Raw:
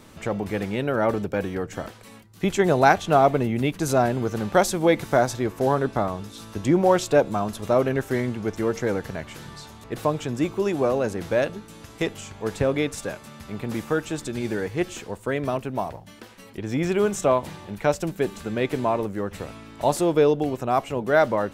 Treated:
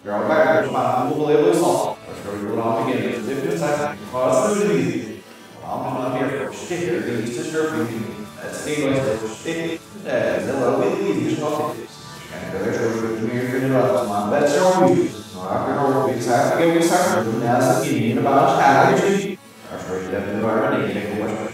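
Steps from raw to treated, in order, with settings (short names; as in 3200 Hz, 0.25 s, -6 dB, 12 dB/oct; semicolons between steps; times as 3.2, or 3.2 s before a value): whole clip reversed; HPF 120 Hz 12 dB/oct; non-linear reverb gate 0.27 s flat, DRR -6 dB; gain -2.5 dB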